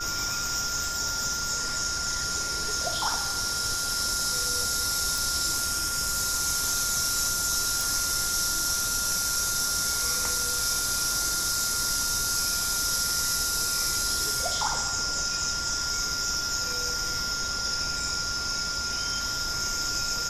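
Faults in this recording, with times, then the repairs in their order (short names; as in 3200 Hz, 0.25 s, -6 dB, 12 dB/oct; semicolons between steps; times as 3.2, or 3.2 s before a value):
tone 1400 Hz -33 dBFS
5.18 pop
7.81 pop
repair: de-click; notch 1400 Hz, Q 30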